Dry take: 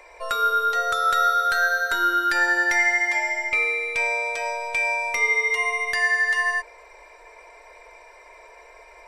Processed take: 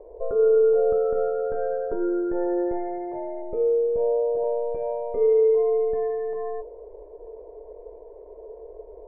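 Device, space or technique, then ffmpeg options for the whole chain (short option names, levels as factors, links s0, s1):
under water: -filter_complex "[0:a]asettb=1/sr,asplit=3[s0][s1][s2];[s0]atrim=end=3.424[s3];[s1]atrim=start=3.42:end=4.44,asetpts=PTS-STARTPTS,afade=t=in:d=0.004:c=qsin,afade=t=out:st=1.016:d=0.004:c=qsin,lowpass=1300[s4];[s2]atrim=start=4.436[s5];[s3][s4]acrossfade=d=0.004:c1=hsin:c2=qsin[s6];[s6][s5]acrossfade=d=0.004:c1=qsin:c2=hsin,lowpass=f=530:w=0.5412,lowpass=f=530:w=1.3066,equalizer=f=430:t=o:w=0.32:g=10,volume=2.66"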